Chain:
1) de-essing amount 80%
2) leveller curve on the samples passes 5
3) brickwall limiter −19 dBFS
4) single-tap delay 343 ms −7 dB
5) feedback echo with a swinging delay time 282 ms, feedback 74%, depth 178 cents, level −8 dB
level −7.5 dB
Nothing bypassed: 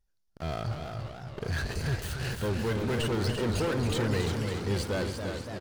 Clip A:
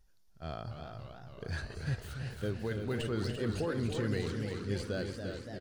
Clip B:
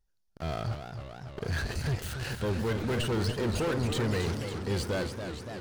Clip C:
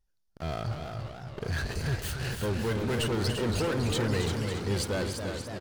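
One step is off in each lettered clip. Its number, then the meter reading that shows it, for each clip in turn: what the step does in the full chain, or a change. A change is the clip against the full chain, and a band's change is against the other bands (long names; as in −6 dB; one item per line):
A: 2, change in crest factor +2.5 dB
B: 4, change in momentary loudness spread +1 LU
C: 1, 8 kHz band +3.0 dB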